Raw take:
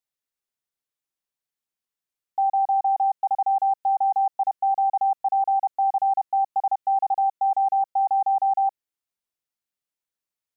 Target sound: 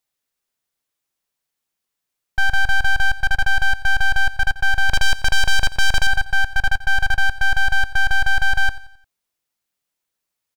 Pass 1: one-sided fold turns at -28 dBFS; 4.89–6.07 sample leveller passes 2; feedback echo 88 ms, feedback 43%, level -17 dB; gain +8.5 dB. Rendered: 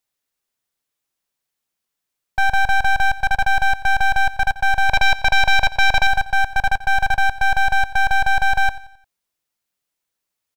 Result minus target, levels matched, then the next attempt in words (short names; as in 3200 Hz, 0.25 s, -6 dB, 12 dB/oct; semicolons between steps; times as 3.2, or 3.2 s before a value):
one-sided fold: distortion -11 dB
one-sided fold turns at -37 dBFS; 4.89–6.07 sample leveller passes 2; feedback echo 88 ms, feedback 43%, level -17 dB; gain +8.5 dB